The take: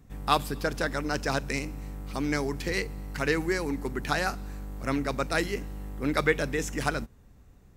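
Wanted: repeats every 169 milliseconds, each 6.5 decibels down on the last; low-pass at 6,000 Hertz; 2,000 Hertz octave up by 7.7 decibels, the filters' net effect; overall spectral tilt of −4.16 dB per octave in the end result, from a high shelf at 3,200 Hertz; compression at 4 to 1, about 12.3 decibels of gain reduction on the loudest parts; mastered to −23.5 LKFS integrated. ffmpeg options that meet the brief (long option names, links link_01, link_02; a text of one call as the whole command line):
ffmpeg -i in.wav -af "lowpass=6000,equalizer=frequency=2000:width_type=o:gain=7.5,highshelf=frequency=3200:gain=7,acompressor=threshold=-29dB:ratio=4,aecho=1:1:169|338|507|676|845|1014:0.473|0.222|0.105|0.0491|0.0231|0.0109,volume=9dB" out.wav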